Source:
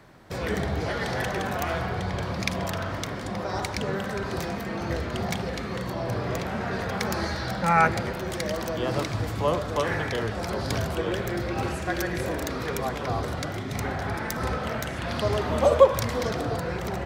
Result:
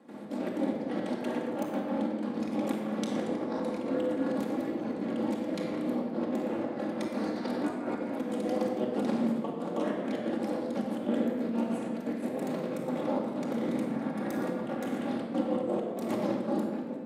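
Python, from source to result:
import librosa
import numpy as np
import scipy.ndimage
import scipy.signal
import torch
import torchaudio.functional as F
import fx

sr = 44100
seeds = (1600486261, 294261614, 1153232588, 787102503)

y = fx.fade_out_tail(x, sr, length_s=1.86)
y = scipy.signal.sosfilt(scipy.signal.butter(2, 7700.0, 'lowpass', fs=sr, output='sos'), y)
y = fx.peak_eq(y, sr, hz=5500.0, db=-14.5, octaves=1.1)
y = fx.echo_feedback(y, sr, ms=117, feedback_pct=40, wet_db=-14)
y = fx.step_gate(y, sr, bpm=183, pattern='.xx.x.x.', floor_db=-12.0, edge_ms=4.5)
y = y * np.sin(2.0 * np.pi * 120.0 * np.arange(len(y)) / sr)
y = fx.over_compress(y, sr, threshold_db=-39.0, ratio=-0.5)
y = scipy.signal.sosfilt(scipy.signal.butter(4, 190.0, 'highpass', fs=sr, output='sos'), y)
y = fx.peak_eq(y, sr, hz=1600.0, db=-13.5, octaves=2.4)
y = fx.room_shoebox(y, sr, seeds[0], volume_m3=1700.0, walls='mixed', distance_m=2.3)
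y = F.gain(torch.from_numpy(y), 8.5).numpy()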